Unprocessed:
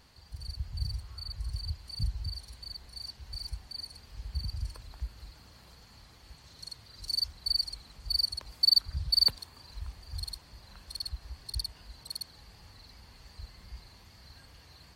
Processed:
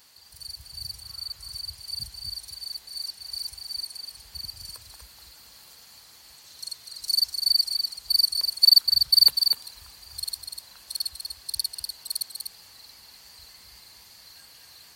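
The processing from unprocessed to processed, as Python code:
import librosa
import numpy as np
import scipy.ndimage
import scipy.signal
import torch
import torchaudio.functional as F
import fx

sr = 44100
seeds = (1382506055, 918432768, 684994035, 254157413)

y = fx.riaa(x, sr, side='recording')
y = y + 10.0 ** (-6.0 / 20.0) * np.pad(y, (int(246 * sr / 1000.0), 0))[:len(y)]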